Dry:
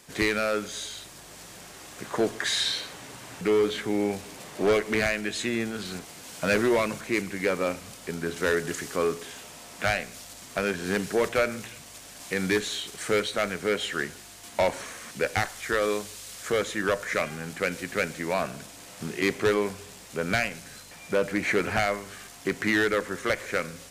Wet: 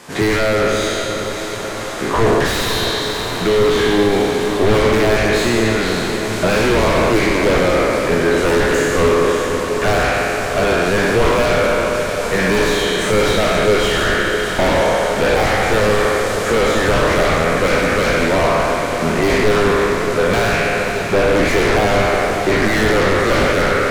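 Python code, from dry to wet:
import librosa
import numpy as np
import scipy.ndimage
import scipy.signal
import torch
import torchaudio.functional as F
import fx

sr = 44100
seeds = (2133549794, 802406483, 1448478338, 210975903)

p1 = fx.spec_trails(x, sr, decay_s=1.84)
p2 = fx.highpass(p1, sr, hz=610.0, slope=6)
p3 = fx.peak_eq(p2, sr, hz=1100.0, db=3.0, octaves=0.77)
p4 = fx.fold_sine(p3, sr, drive_db=18, ceiling_db=-7.5)
p5 = p3 + (p4 * librosa.db_to_amplitude(-8.0))
p6 = fx.tilt_eq(p5, sr, slope=-3.0)
y = fx.echo_diffused(p6, sr, ms=568, feedback_pct=69, wet_db=-8)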